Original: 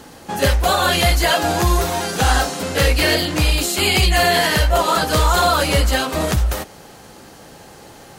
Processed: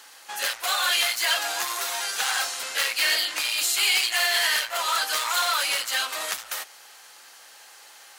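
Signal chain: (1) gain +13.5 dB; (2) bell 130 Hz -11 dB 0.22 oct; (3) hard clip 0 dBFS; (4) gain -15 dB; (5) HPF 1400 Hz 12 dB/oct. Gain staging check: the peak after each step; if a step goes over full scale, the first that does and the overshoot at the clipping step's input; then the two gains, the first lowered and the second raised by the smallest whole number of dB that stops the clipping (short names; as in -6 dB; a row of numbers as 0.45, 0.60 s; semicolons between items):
+9.0, +9.0, 0.0, -15.0, -10.5 dBFS; step 1, 9.0 dB; step 1 +4.5 dB, step 4 -6 dB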